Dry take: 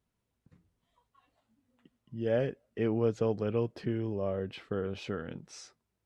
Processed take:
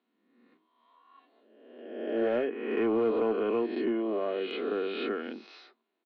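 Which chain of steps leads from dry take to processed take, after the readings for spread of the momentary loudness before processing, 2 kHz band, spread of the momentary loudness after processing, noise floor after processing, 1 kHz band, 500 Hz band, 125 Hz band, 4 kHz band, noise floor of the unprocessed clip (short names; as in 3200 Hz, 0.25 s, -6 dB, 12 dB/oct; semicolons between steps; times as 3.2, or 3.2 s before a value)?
15 LU, +6.0 dB, 13 LU, -80 dBFS, +6.5 dB, +3.5 dB, -17.0 dB, +5.5 dB, -83 dBFS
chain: spectral swells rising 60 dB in 1.22 s; Chebyshev band-pass 220–4200 Hz, order 5; in parallel at -9 dB: wavefolder -27 dBFS; on the sum: treble ducked by the level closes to 2800 Hz, closed at -26 dBFS; comb 2.8 ms, depth 36%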